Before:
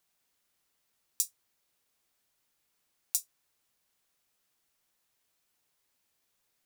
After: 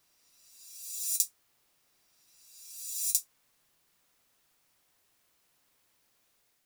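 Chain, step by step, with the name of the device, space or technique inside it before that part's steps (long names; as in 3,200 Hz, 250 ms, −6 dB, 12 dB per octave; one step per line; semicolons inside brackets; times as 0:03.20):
reverse reverb (reversed playback; convolution reverb RT60 3.1 s, pre-delay 43 ms, DRR −3 dB; reversed playback)
level +2.5 dB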